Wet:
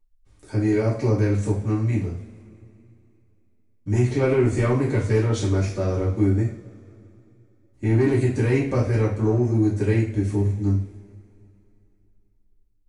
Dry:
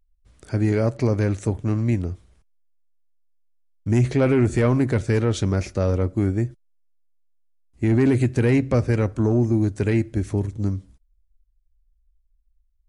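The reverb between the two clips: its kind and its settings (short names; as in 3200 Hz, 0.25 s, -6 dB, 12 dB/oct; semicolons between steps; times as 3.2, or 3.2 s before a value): two-slope reverb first 0.43 s, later 2.9 s, from -22 dB, DRR -7 dB; gain -8.5 dB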